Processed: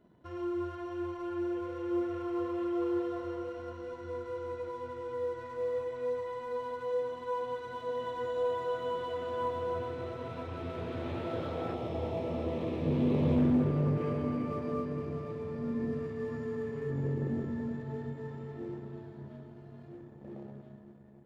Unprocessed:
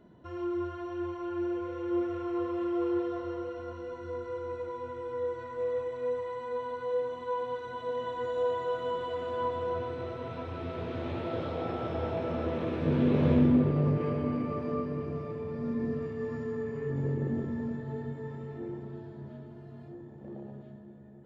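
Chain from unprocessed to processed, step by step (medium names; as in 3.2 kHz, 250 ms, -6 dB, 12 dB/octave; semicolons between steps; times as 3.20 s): 11.74–13.39 s: peaking EQ 1.5 kHz -14.5 dB 0.42 oct; waveshaping leveller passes 1; trim -5.5 dB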